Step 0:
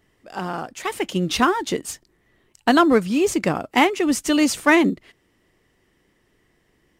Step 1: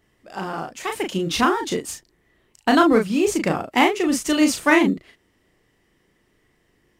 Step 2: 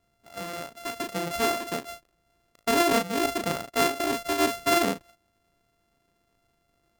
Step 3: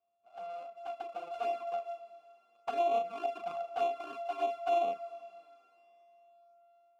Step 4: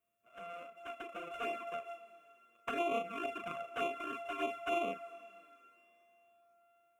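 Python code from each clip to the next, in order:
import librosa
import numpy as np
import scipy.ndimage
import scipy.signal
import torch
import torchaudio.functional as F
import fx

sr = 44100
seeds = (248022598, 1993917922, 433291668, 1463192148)

y1 = fx.doubler(x, sr, ms=36.0, db=-4.5)
y1 = y1 * 10.0 ** (-1.5 / 20.0)
y2 = np.r_[np.sort(y1[:len(y1) // 64 * 64].reshape(-1, 64), axis=1).ravel(), y1[len(y1) // 64 * 64:]]
y2 = y2 * 10.0 ** (-7.0 / 20.0)
y3 = fx.vowel_filter(y2, sr, vowel='a')
y3 = fx.rev_schroeder(y3, sr, rt60_s=3.5, comb_ms=27, drr_db=17.0)
y3 = fx.env_flanger(y3, sr, rest_ms=9.1, full_db=-25.0)
y4 = fx.fixed_phaser(y3, sr, hz=1900.0, stages=4)
y4 = y4 * 10.0 ** (8.0 / 20.0)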